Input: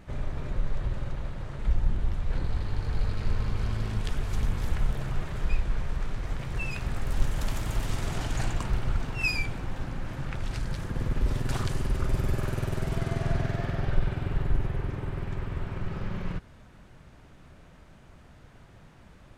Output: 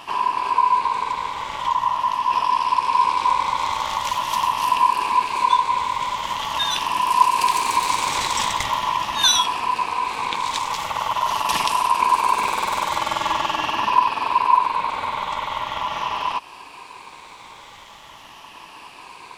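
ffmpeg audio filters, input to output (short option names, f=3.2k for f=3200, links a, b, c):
-filter_complex "[0:a]afftfilt=real='re*pow(10,8/40*sin(2*PI*(0.78*log(max(b,1)*sr/1024/100)/log(2)-(-0.43)*(pts-256)/sr)))':imag='im*pow(10,8/40*sin(2*PI*(0.78*log(max(b,1)*sr/1024/100)/log(2)-(-0.43)*(pts-256)/sr)))':win_size=1024:overlap=0.75,asplit=2[a][b];[b]acompressor=threshold=-33dB:ratio=8,volume=-1.5dB[c];[a][c]amix=inputs=2:normalize=0,aeval=exprs='val(0)*sin(2*PI*1000*n/s)':c=same,highshelf=f=2k:t=q:w=1.5:g=8,volume=6.5dB"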